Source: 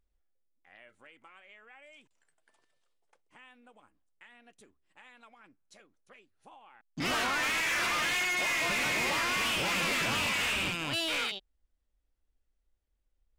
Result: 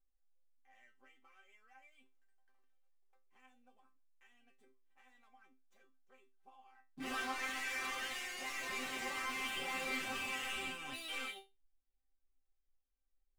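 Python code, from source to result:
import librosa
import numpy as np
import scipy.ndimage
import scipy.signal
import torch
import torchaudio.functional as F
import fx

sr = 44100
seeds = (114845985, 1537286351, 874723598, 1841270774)

y = scipy.ndimage.median_filter(x, 9, mode='constant')
y = fx.resonator_bank(y, sr, root=60, chord='fifth', decay_s=0.24)
y = F.gain(torch.from_numpy(y), 5.5).numpy()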